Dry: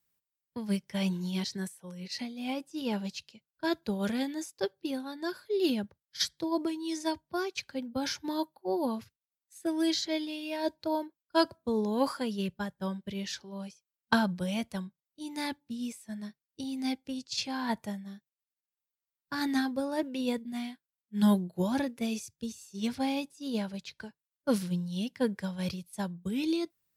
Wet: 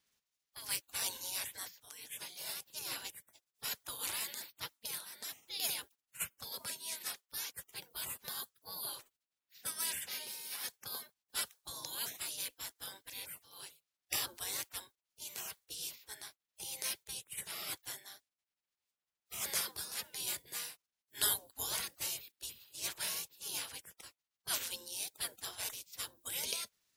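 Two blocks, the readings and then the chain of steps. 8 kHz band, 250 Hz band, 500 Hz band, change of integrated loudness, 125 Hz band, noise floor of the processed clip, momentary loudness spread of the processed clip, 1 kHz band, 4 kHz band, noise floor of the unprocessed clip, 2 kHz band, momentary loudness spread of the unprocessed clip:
+6.5 dB, -32.0 dB, -21.0 dB, -6.5 dB, -22.0 dB, under -85 dBFS, 11 LU, -13.5 dB, -2.0 dB, under -85 dBFS, -6.0 dB, 12 LU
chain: pre-emphasis filter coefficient 0.8; spectral gate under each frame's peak -25 dB weak; trim +16 dB

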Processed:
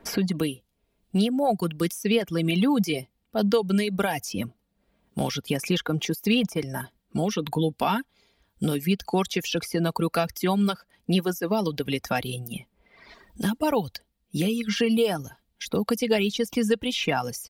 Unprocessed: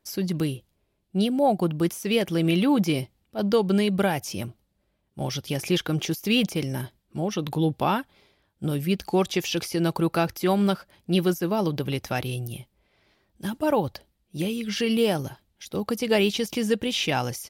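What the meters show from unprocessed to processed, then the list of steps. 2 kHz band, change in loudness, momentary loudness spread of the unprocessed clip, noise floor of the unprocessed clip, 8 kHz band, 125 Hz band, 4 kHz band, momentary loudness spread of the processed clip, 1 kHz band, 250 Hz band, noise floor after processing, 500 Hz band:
0.0 dB, -0.5 dB, 12 LU, -73 dBFS, 0.0 dB, -1.5 dB, -0.5 dB, 11 LU, -0.5 dB, -0.5 dB, -74 dBFS, -1.0 dB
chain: comb 4.3 ms, depth 38%; reverb removal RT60 1.3 s; three bands compressed up and down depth 70%

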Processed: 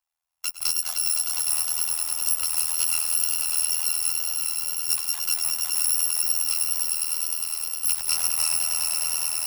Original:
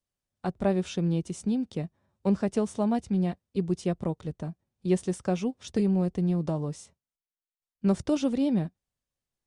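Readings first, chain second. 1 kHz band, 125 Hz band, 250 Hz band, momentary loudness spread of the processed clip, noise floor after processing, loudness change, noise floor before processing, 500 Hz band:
-2.0 dB, under -25 dB, under -35 dB, 4 LU, -42 dBFS, +7.0 dB, under -85 dBFS, under -20 dB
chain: bit-reversed sample order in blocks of 256 samples; on a send: echo with a slow build-up 102 ms, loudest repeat 5, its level -8 dB; on the sum: AM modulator 81 Hz, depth 75%; in parallel at +2 dB: peak limiter -24 dBFS, peak gain reduction 10.5 dB; on the sum: wow and flutter 17 cents; resonant low shelf 560 Hz -14 dB, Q 3

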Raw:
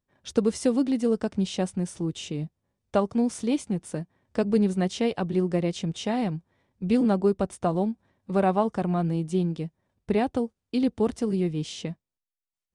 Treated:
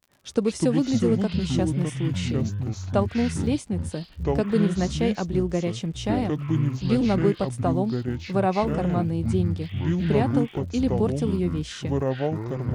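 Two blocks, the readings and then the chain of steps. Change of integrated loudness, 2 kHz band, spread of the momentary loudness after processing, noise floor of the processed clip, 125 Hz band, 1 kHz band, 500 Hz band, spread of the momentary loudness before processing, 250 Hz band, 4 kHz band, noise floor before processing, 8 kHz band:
+2.0 dB, +3.5 dB, 6 LU, -43 dBFS, +7.0 dB, +0.5 dB, +1.0 dB, 11 LU, +2.0 dB, +2.5 dB, under -85 dBFS, +1.0 dB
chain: crackle 55 per s -43 dBFS; ever faster or slower copies 94 ms, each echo -6 st, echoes 3

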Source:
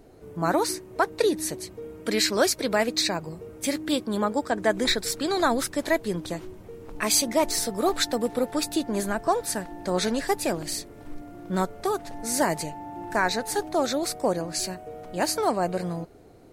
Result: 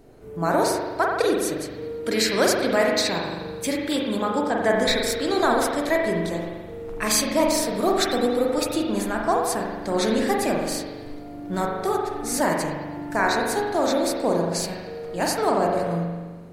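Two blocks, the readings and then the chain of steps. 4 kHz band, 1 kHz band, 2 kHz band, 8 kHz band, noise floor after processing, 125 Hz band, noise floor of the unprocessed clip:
+1.0 dB, +3.5 dB, +3.5 dB, 0.0 dB, -37 dBFS, +3.5 dB, -46 dBFS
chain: spring tank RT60 1.4 s, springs 41 ms, chirp 70 ms, DRR -1 dB

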